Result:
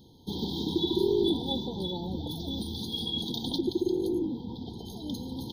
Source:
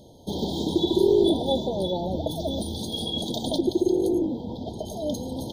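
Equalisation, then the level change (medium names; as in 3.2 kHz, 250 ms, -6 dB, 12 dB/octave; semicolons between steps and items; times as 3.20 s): bass shelf 120 Hz -5 dB; static phaser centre 2.3 kHz, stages 6; -1.0 dB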